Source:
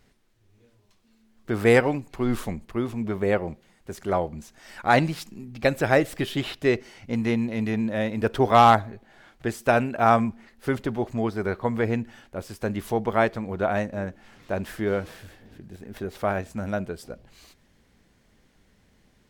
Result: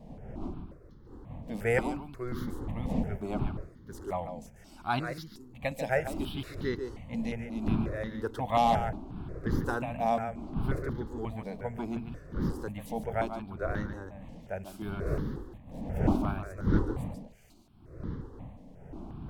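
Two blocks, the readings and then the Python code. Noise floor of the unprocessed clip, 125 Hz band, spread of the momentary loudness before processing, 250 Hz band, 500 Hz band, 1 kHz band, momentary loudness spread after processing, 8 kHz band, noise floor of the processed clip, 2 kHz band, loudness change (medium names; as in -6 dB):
-63 dBFS, -4.0 dB, 17 LU, -6.5 dB, -10.0 dB, -9.5 dB, 17 LU, -9.5 dB, -53 dBFS, -10.5 dB, -9.0 dB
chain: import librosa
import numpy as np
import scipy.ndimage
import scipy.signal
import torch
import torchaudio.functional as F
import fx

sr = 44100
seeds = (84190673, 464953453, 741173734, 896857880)

y = fx.dmg_wind(x, sr, seeds[0], corner_hz=260.0, level_db=-27.0)
y = y + 10.0 ** (-8.5 / 20.0) * np.pad(y, (int(142 * sr / 1000.0), 0))[:len(y)]
y = fx.phaser_held(y, sr, hz=5.6, low_hz=370.0, high_hz=2500.0)
y = y * 10.0 ** (-7.5 / 20.0)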